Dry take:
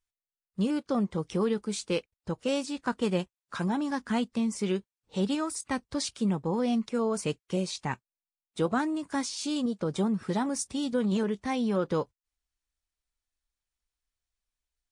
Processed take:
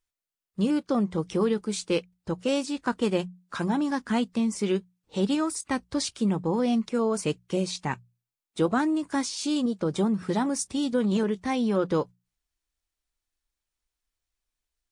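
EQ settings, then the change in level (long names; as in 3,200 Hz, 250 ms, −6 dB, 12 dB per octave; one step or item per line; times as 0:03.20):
parametric band 330 Hz +3.5 dB 0.34 octaves
mains-hum notches 60/120/180 Hz
+2.5 dB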